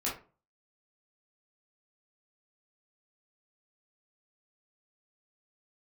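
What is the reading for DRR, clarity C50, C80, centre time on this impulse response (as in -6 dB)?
-6.5 dB, 6.0 dB, 13.5 dB, 34 ms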